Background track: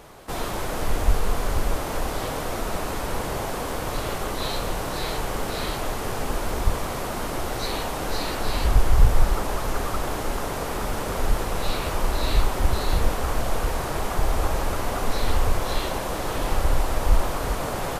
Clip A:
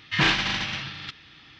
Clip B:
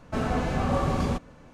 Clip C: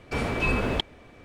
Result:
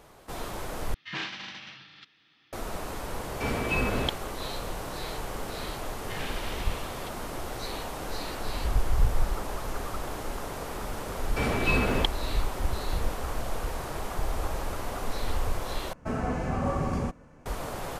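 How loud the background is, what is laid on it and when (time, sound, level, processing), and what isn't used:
background track -7.5 dB
0.94 replace with A -13.5 dB + HPF 170 Hz
3.29 add C -2.5 dB
5.98 add A -10.5 dB + compressor 3:1, threshold -27 dBFS
11.25 add C
15.93 replace with B -3 dB + bell 3700 Hz -9.5 dB 0.74 oct

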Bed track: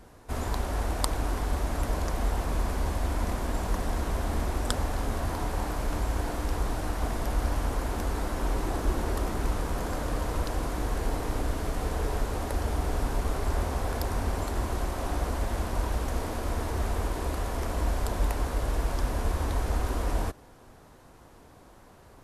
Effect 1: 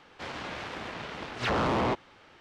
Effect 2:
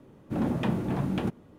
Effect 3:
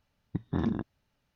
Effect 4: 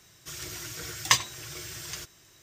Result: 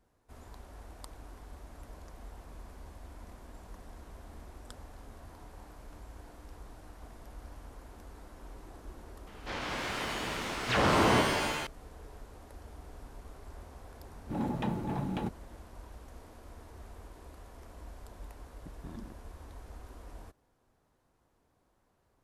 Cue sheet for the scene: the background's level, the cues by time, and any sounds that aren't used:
bed track -20 dB
9.27 add 1 -0.5 dB + shimmer reverb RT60 1.2 s, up +7 st, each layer -2 dB, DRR 3 dB
13.99 add 2 -6 dB + small resonant body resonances 850/3900 Hz, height 11 dB
18.31 add 3 -17 dB
not used: 4

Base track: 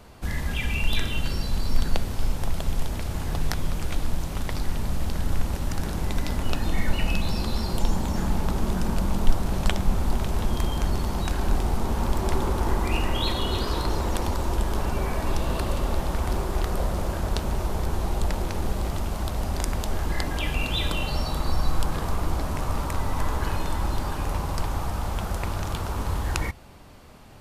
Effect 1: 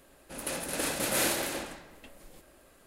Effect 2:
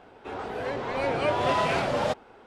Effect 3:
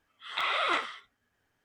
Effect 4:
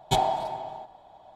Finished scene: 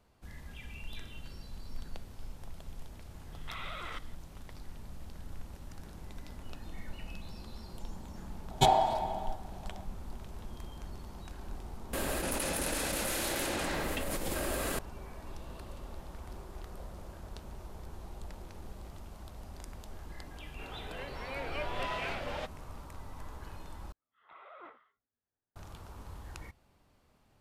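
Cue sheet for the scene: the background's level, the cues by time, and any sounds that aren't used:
base track -19.5 dB
3.12 add 3 -3 dB + level quantiser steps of 20 dB
8.5 add 4 -0.5 dB
11.93 add 1 -8 dB + fast leveller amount 100%
20.33 add 2 -14.5 dB + bell 2500 Hz +8 dB 1.6 oct
23.92 replace with 3 -18 dB + LPF 1100 Hz

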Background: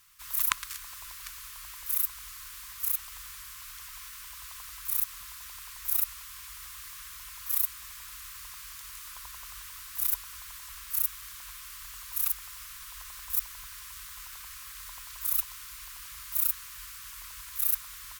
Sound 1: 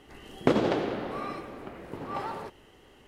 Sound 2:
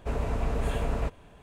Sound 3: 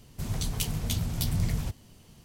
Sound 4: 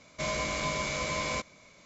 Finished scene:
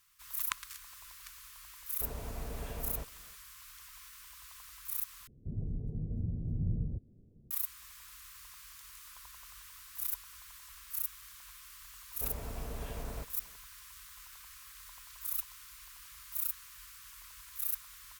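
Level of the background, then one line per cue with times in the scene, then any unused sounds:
background -8 dB
1.95 add 2 -12.5 dB, fades 0.05 s
5.27 replace with 3 -5.5 dB + inverse Chebyshev low-pass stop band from 1200 Hz, stop band 50 dB
12.15 add 2 -12.5 dB
not used: 1, 4

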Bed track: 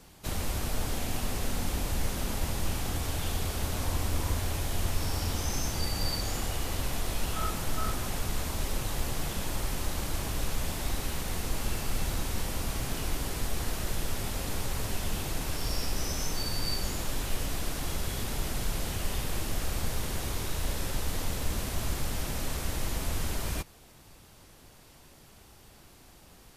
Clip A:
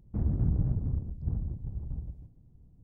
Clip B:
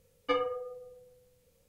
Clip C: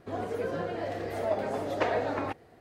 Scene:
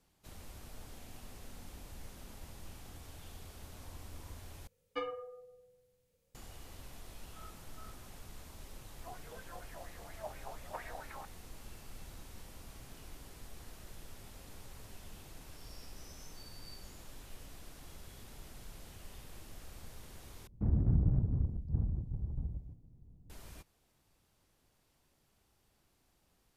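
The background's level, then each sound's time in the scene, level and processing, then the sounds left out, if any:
bed track -19 dB
4.67 replace with B -9 dB
8.93 add C -7 dB + wah 4.3 Hz 800–2500 Hz, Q 3.7
20.47 replace with A -1.5 dB

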